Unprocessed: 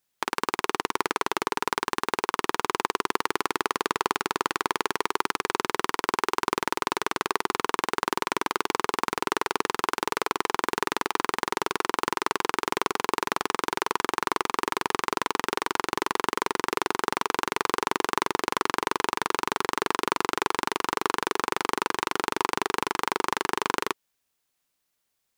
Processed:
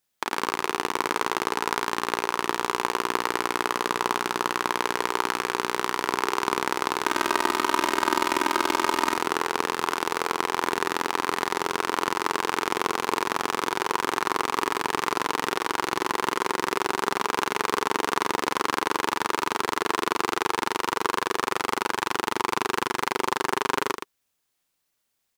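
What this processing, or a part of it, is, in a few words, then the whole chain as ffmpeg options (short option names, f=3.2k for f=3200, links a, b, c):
slapback doubling: -filter_complex "[0:a]asettb=1/sr,asplit=3[a][b][c];[a]atrim=end=7.064[d];[b]atrim=start=7.06:end=9.18,asetpts=PTS-STARTPTS,afade=t=in:d=0.004:c=qsin,afade=t=out:st=2.116:d=0.004:c=qsin,aecho=1:1:3.2:0.97,atrim=end_sample=93492[e];[c]atrim=start=9.176[f];[d][e]acrossfade=d=0.004:c1=hsin:c2=qsin[g];[g][f]acrossfade=d=0.004:c1=qsin:c2=hsin,asplit=3[h][i][j];[i]adelay=34,volume=-8dB[k];[j]adelay=117,volume=-7.5dB[l];[h][k][l]amix=inputs=3:normalize=0"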